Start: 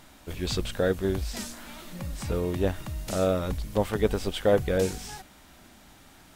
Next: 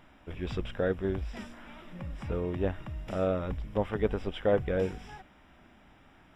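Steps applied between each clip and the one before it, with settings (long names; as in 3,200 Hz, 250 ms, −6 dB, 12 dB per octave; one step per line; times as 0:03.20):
bit reduction 10 bits
Savitzky-Golay smoothing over 25 samples
level −4 dB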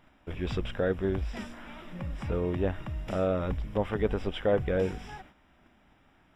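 noise gate −55 dBFS, range −8 dB
in parallel at +0.5 dB: brickwall limiter −24.5 dBFS, peak gain reduction 9 dB
on the sum: level −3 dB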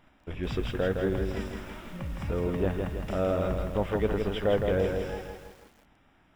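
feedback echo at a low word length 163 ms, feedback 55%, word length 9 bits, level −4.5 dB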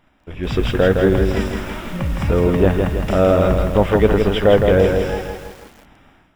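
automatic gain control gain up to 12 dB
level +2 dB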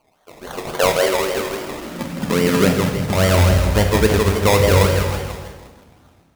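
high-pass filter sweep 660 Hz → 78 Hz, 0:00.90–0:03.52
sample-and-hold swept by an LFO 24×, swing 60% 3.6 Hz
dense smooth reverb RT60 0.98 s, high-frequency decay 0.95×, DRR 4 dB
level −3.5 dB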